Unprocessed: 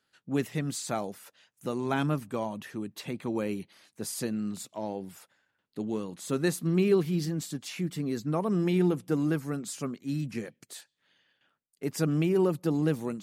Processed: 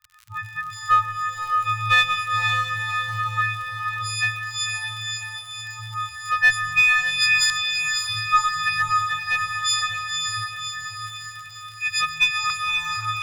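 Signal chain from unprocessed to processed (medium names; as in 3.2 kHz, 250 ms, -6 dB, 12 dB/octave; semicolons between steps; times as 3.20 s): partials quantised in pitch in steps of 6 st; LFO low-pass saw up 0.4 Hz 740–4200 Hz; crackle 67 per s -44 dBFS; Chebyshev band-stop 110–1100 Hz, order 5; in parallel at -3 dB: one-sided clip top -30.5 dBFS; on the sum: echo that smears into a reverb 567 ms, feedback 55%, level -4 dB; on a send at -11 dB: reverberation RT60 2.7 s, pre-delay 85 ms; on the sum: trim +7 dB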